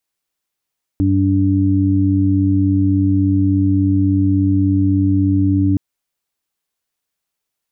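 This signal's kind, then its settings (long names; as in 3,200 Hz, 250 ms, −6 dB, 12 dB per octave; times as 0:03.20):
steady harmonic partials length 4.77 s, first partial 96.5 Hz, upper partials −8/1 dB, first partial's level −15 dB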